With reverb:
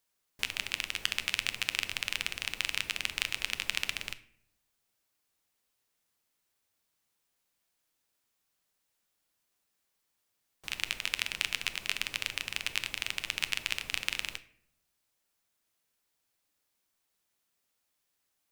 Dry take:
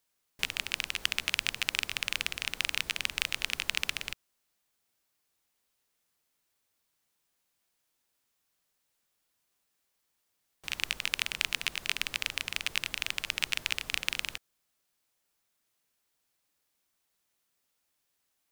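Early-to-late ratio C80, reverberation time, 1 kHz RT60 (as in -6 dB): 19.5 dB, 0.65 s, 0.55 s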